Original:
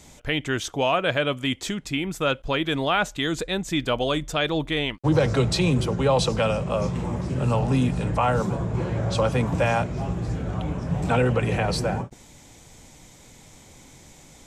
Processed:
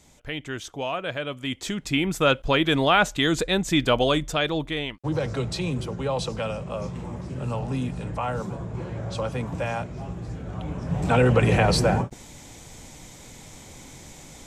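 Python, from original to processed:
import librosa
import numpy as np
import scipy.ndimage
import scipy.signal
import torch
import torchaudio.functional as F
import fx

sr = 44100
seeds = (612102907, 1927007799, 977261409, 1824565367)

y = fx.gain(x, sr, db=fx.line((1.31, -7.0), (1.98, 3.5), (4.01, 3.5), (5.08, -6.5), (10.43, -6.5), (11.43, 4.5)))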